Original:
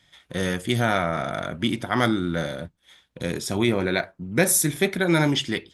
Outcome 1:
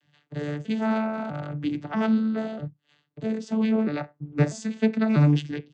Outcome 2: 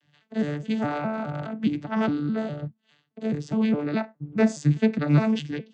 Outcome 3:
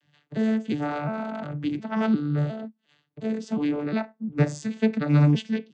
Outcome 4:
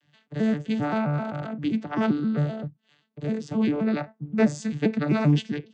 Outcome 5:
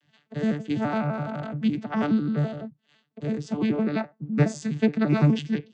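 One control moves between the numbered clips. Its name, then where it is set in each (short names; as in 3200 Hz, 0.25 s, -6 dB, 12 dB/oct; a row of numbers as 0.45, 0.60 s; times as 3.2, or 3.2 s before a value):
arpeggiated vocoder, a note every: 644, 207, 356, 131, 84 ms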